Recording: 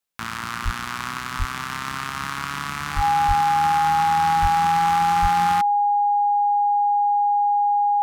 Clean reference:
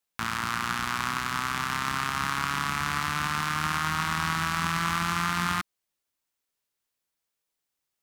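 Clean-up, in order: notch 820 Hz, Q 30; de-plosive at 0.64/1.38/2.95/3.27/4.41/5.21

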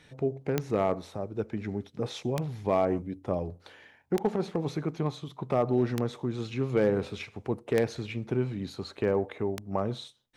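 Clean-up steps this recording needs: clip repair -16.5 dBFS; de-click

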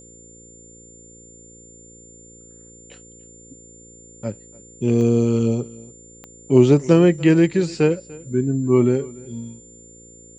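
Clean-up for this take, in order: de-click; de-hum 57.4 Hz, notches 9; notch 7200 Hz, Q 30; inverse comb 0.293 s -22 dB

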